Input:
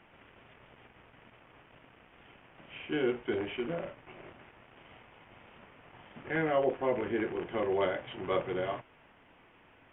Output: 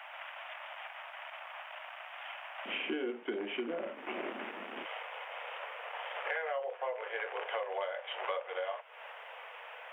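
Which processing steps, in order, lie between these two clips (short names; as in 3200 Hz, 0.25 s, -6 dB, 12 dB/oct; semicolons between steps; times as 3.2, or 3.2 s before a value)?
steep high-pass 600 Hz 72 dB/oct, from 2.65 s 200 Hz, from 4.84 s 480 Hz; compressor 10:1, threshold -48 dBFS, peak gain reduction 23.5 dB; gain +14 dB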